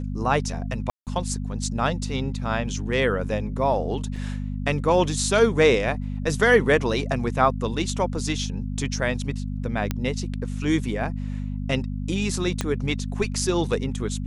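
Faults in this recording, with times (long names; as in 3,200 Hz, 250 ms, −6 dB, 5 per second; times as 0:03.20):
mains hum 50 Hz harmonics 5 −29 dBFS
0:00.90–0:01.07: drop-out 168 ms
0:04.16: drop-out 3.9 ms
0:09.91: click −11 dBFS
0:12.61: click −10 dBFS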